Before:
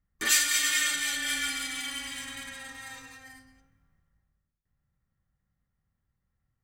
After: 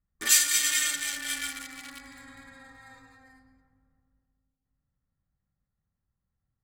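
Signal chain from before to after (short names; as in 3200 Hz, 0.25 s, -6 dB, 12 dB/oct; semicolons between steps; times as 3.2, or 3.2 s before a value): Wiener smoothing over 15 samples; high shelf 3600 Hz +9.5 dB; darkening echo 0.317 s, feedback 48%, low-pass 980 Hz, level -12.5 dB; gain -3.5 dB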